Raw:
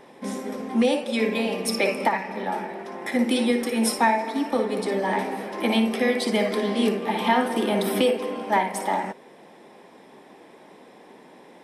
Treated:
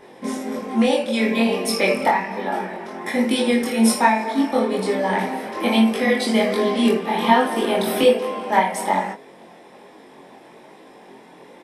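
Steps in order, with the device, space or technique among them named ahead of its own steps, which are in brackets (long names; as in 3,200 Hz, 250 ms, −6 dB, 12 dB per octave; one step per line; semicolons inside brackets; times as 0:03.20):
double-tracked vocal (double-tracking delay 22 ms −2.5 dB; chorus effect 1.2 Hz, delay 19 ms, depth 4.5 ms)
level +5 dB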